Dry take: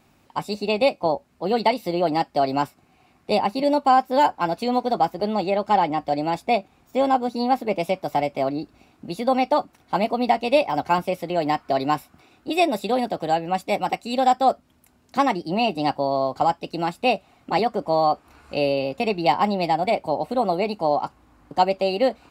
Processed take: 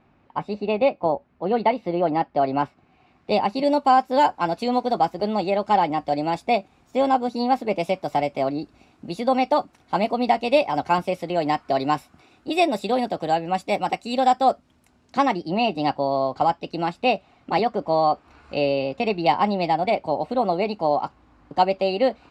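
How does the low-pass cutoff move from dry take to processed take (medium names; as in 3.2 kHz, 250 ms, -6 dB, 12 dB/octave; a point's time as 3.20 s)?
2.32 s 2.2 kHz
3.33 s 4.8 kHz
3.69 s 9.2 kHz
14.47 s 9.2 kHz
15.58 s 5.2 kHz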